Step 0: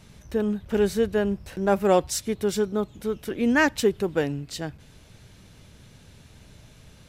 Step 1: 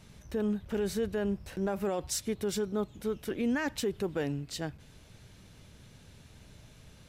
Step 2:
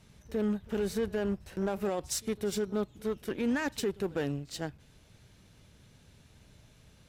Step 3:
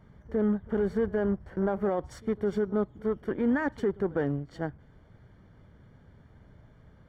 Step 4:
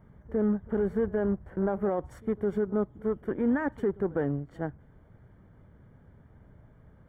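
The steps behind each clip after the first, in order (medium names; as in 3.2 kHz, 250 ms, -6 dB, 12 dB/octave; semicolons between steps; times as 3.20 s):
peak limiter -19 dBFS, peak gain reduction 11.5 dB; trim -4 dB
pre-echo 57 ms -20 dB; Chebyshev shaper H 7 -25 dB, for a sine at -22 dBFS
Savitzky-Golay filter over 41 samples; trim +4 dB
peaking EQ 4.7 kHz -15 dB 1.3 oct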